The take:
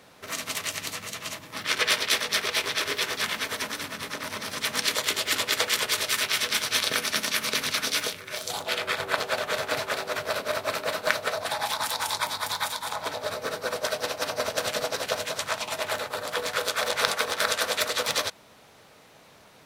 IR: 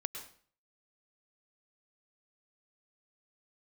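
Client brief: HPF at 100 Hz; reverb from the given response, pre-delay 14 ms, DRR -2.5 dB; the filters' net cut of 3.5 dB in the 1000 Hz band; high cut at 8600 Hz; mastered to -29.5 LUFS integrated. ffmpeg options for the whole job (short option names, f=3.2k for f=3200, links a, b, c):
-filter_complex "[0:a]highpass=100,lowpass=8.6k,equalizer=f=1k:t=o:g=-4.5,asplit=2[a][b];[1:a]atrim=start_sample=2205,adelay=14[c];[b][c]afir=irnorm=-1:irlink=0,volume=2.5dB[d];[a][d]amix=inputs=2:normalize=0,volume=-5.5dB"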